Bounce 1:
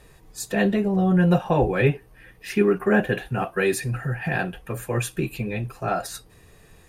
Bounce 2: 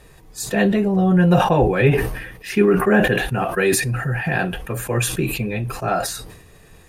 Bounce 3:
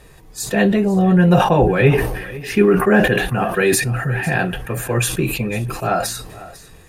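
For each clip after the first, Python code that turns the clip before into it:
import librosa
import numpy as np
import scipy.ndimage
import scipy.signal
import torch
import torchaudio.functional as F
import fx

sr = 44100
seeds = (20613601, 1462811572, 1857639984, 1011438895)

y1 = fx.sustainer(x, sr, db_per_s=58.0)
y1 = F.gain(torch.from_numpy(y1), 3.5).numpy()
y2 = y1 + 10.0 ** (-18.0 / 20.0) * np.pad(y1, (int(499 * sr / 1000.0), 0))[:len(y1)]
y2 = F.gain(torch.from_numpy(y2), 2.0).numpy()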